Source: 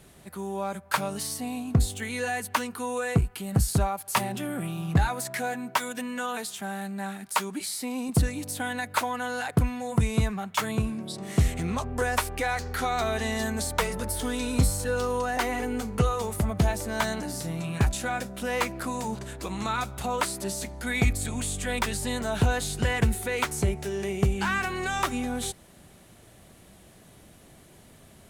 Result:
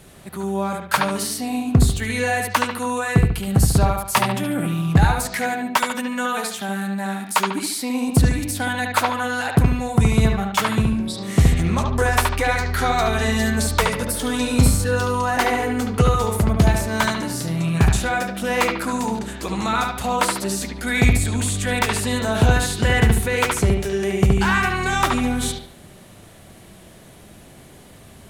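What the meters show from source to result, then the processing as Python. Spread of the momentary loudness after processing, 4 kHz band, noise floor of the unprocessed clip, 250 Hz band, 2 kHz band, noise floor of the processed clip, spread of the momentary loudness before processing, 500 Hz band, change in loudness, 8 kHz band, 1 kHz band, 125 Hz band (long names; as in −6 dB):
7 LU, +8.0 dB, −53 dBFS, +9.0 dB, +8.5 dB, −45 dBFS, 7 LU, +7.0 dB, +8.0 dB, +6.5 dB, +8.0 dB, +8.5 dB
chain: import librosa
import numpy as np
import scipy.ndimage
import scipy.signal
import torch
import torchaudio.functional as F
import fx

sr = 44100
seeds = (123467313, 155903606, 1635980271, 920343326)

y = fx.echo_bbd(x, sr, ms=72, stages=2048, feedback_pct=37, wet_db=-3.5)
y = y * librosa.db_to_amplitude(6.5)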